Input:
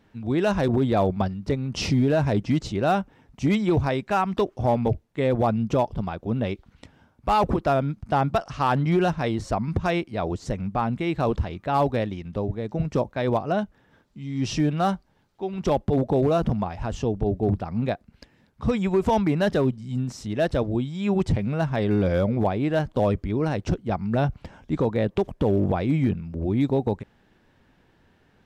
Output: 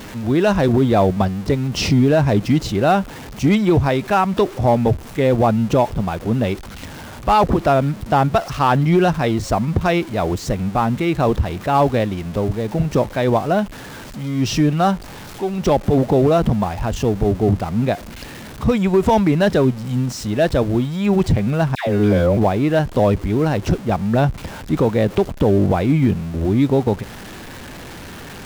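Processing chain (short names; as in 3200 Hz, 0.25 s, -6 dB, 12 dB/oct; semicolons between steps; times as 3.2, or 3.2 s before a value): zero-crossing step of -35.5 dBFS; 21.75–22.37 dispersion lows, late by 0.121 s, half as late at 980 Hz; gain +6 dB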